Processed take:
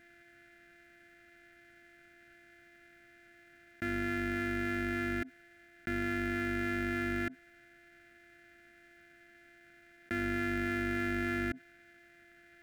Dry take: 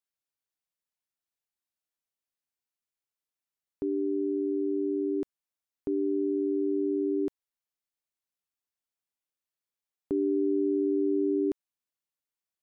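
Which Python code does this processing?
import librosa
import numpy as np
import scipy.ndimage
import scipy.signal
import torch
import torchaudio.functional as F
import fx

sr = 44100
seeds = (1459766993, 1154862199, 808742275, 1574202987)

y = np.r_[np.sort(x[:len(x) // 128 * 128].reshape(-1, 128), axis=1).ravel(), x[len(x) // 128 * 128:]]
y = fx.curve_eq(y, sr, hz=(130.0, 180.0, 260.0, 420.0, 680.0, 1000.0, 1500.0, 2100.0, 3000.0, 4900.0), db=(0, -3, 2, -12, -10, -26, 8, 4, -8, -15))
y = fx.env_flatten(y, sr, amount_pct=70)
y = y * librosa.db_to_amplitude(-4.0)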